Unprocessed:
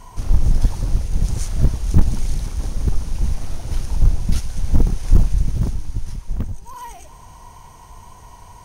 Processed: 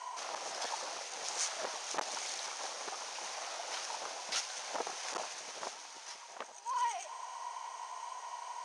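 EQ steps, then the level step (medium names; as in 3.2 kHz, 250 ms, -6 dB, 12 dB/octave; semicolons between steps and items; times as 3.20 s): high-pass 630 Hz 24 dB/octave; low-pass 7.4 kHz 24 dB/octave; +1.5 dB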